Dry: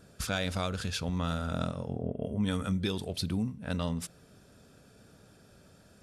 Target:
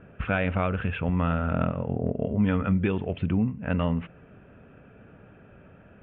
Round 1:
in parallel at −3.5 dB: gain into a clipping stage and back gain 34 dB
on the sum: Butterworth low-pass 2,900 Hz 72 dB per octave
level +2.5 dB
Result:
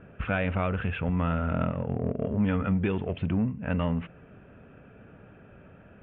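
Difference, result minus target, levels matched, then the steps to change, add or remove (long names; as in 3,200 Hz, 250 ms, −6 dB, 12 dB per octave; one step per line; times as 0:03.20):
gain into a clipping stage and back: distortion +22 dB
change: gain into a clipping stage and back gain 22.5 dB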